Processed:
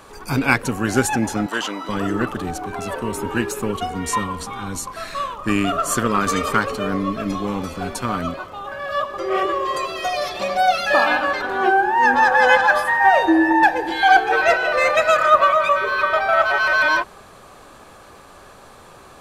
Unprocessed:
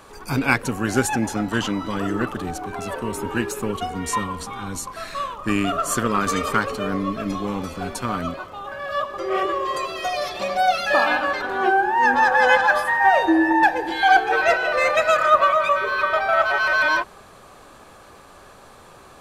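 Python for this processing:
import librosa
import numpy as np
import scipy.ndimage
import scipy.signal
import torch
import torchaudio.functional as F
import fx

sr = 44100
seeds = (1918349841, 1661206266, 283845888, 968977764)

y = fx.highpass(x, sr, hz=420.0, slope=12, at=(1.46, 1.89))
y = y * 10.0 ** (2.0 / 20.0)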